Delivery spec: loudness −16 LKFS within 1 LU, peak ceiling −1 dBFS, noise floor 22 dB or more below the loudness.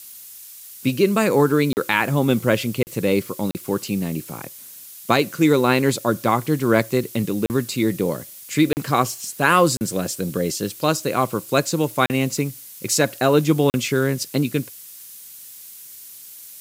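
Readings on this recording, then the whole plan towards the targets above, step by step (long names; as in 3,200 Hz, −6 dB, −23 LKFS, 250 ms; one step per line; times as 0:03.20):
number of dropouts 8; longest dropout 39 ms; background noise floor −41 dBFS; target noise floor −43 dBFS; integrated loudness −20.5 LKFS; sample peak −2.5 dBFS; target loudness −16.0 LKFS
→ repair the gap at 0:01.73/0:02.83/0:03.51/0:07.46/0:08.73/0:09.77/0:12.06/0:13.70, 39 ms
broadband denoise 6 dB, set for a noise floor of −41 dBFS
level +4.5 dB
brickwall limiter −1 dBFS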